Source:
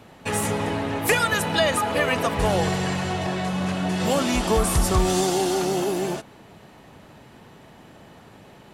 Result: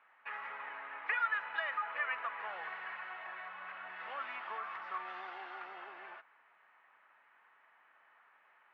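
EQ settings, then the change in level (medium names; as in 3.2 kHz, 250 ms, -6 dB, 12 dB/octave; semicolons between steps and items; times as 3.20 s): Butterworth band-pass 1.6 kHz, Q 1.3; distance through air 290 m; -7.0 dB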